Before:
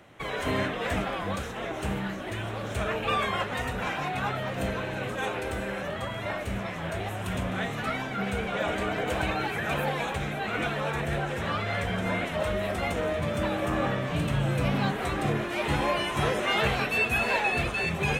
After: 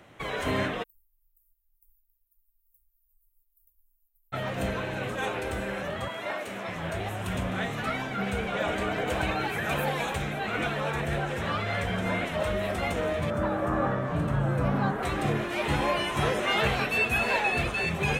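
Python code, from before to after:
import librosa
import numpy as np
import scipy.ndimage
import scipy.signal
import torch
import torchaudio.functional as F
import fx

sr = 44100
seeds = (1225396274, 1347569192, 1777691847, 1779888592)

y = fx.cheby2_bandstop(x, sr, low_hz=100.0, high_hz=4200.0, order=4, stop_db=80, at=(0.82, 4.32), fade=0.02)
y = fx.highpass(y, sr, hz=290.0, slope=12, at=(6.08, 6.68))
y = fx.high_shelf(y, sr, hz=fx.line((9.49, 10000.0), (10.21, 5500.0)), db=6.0, at=(9.49, 10.21), fade=0.02)
y = fx.high_shelf_res(y, sr, hz=1900.0, db=-9.0, q=1.5, at=(13.3, 15.03))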